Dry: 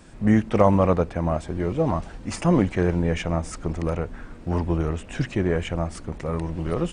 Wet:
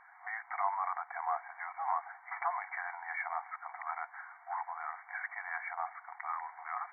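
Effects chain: limiter -14 dBFS, peak gain reduction 11 dB; brick-wall FIR band-pass 690–2300 Hz

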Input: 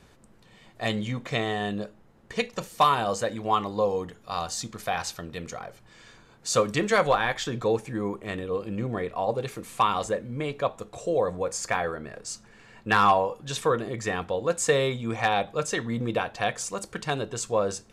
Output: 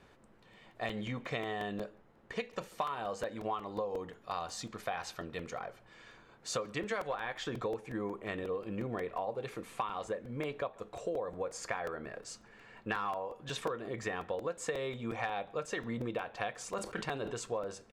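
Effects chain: tone controls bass -6 dB, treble -10 dB; compressor 10:1, threshold -30 dBFS, peak gain reduction 15 dB; speakerphone echo 0.14 s, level -24 dB; crackling interface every 0.18 s, samples 128, repeat, from 0.53; 16.64–17.33 sustainer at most 89 dB/s; gain -2.5 dB

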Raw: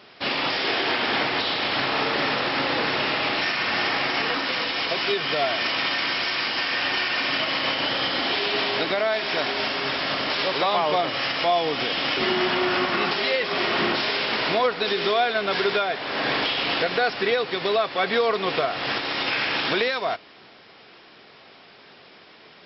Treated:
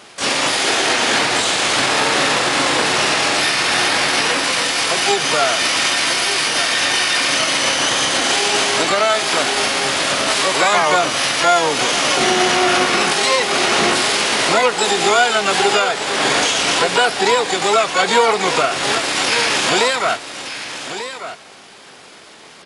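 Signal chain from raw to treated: echo 1.191 s -11 dB; harmoniser +12 st -2 dB; gain +5.5 dB

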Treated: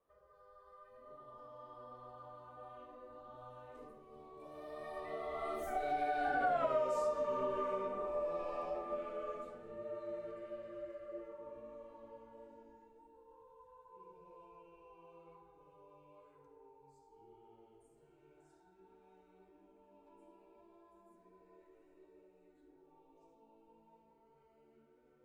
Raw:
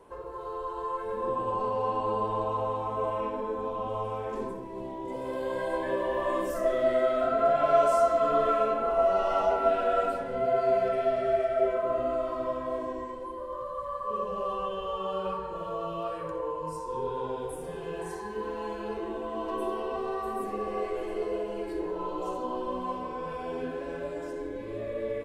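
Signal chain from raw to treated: Doppler pass-by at 6.58, 46 m/s, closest 8.3 m; compressor 4:1, threshold -39 dBFS, peak gain reduction 15.5 dB; gain +5.5 dB

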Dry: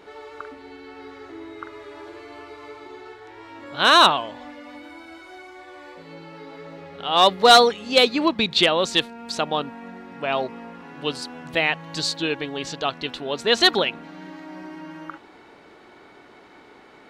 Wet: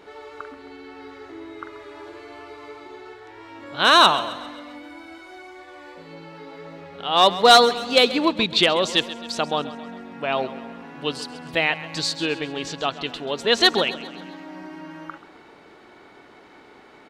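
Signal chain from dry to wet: feedback echo 0.133 s, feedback 53%, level -15.5 dB

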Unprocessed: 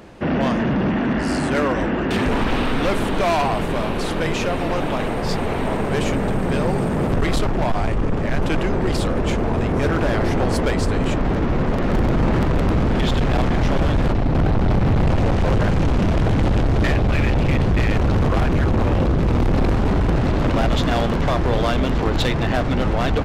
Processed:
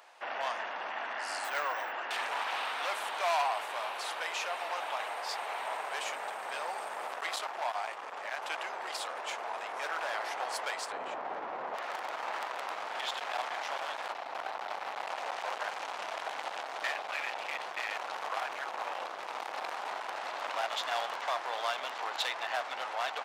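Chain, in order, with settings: Chebyshev high-pass 770 Hz, order 3; 1.44–1.92 careless resampling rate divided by 2×, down filtered, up hold; 10.92–11.75 tilt -4.5 dB/oct; gain -7.5 dB

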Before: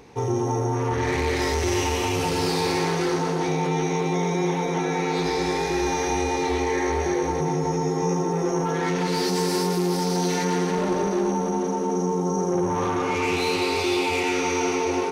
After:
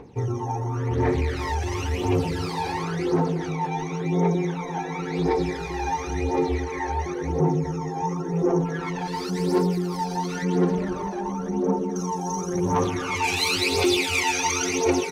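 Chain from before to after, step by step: reverb removal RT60 0.53 s; high shelf 2800 Hz -9.5 dB, from 11.96 s +5 dB, from 13.24 s +9.5 dB; phaser 0.94 Hz, delay 1.3 ms, feedback 67%; gain -3 dB

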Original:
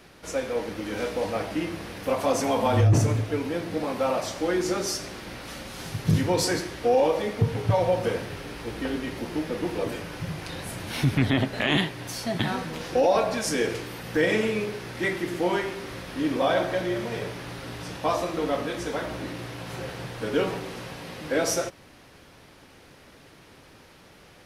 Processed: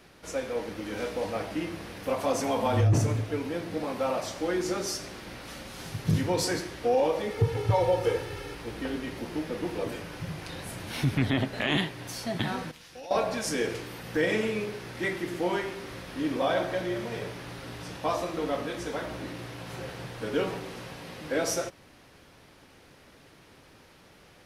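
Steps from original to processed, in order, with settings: 7.3–8.55 comb 2.3 ms, depth 76%; 12.71–13.11 passive tone stack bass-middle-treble 5-5-5; gain -3.5 dB

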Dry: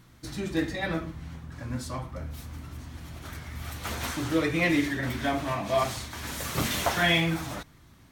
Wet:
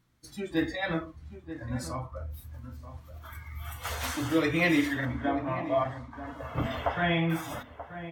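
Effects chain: 5.05–7.3 LPF 1100 Hz 6 dB/oct; spectral noise reduction 15 dB; outdoor echo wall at 160 m, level -12 dB

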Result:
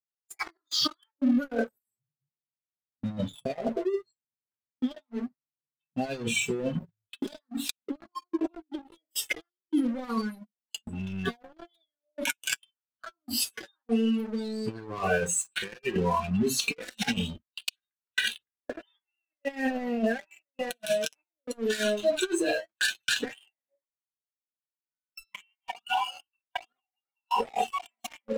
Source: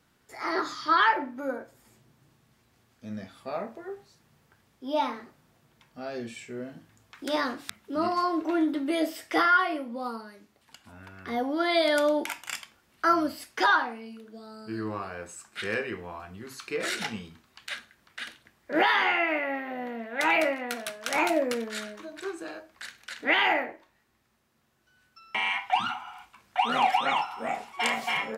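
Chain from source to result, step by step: flipped gate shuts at -18 dBFS, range -31 dB; spectral noise reduction 29 dB; gate -57 dBFS, range -16 dB; spectral delete 9.49–9.91, 530–3100 Hz; negative-ratio compressor -40 dBFS, ratio -0.5; sample leveller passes 3; flange 0.11 Hz, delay 2 ms, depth 6.9 ms, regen +29%; gain +4.5 dB

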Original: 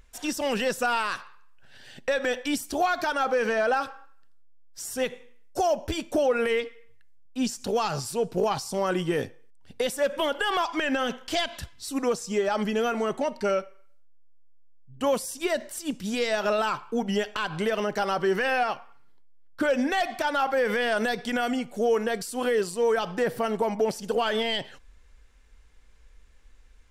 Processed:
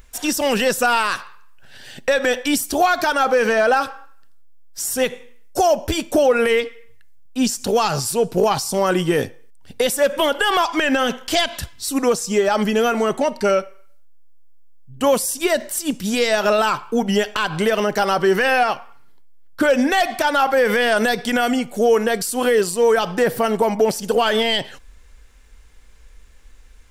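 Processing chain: high shelf 9200 Hz +9 dB; gain +8 dB

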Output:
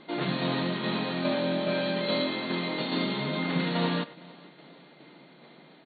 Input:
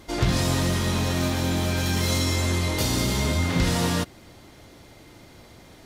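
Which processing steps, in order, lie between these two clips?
1.23–2.26 whine 580 Hz -27 dBFS; speakerphone echo 0.1 s, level -15 dB; tremolo saw down 2.4 Hz, depth 35%; on a send: feedback echo 0.456 s, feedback 45%, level -23.5 dB; on the sum: FFT band-pass 130–4500 Hz; gain -1.5 dB

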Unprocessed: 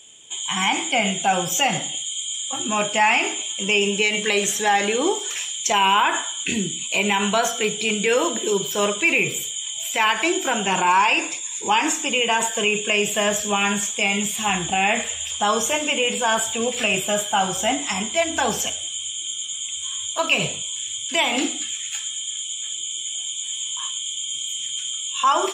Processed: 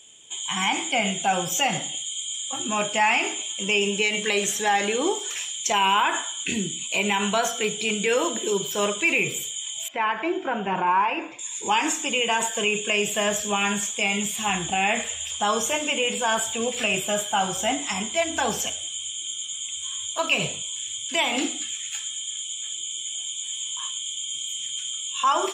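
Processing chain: 9.88–11.39 LPF 1700 Hz 12 dB/oct; gain -3 dB

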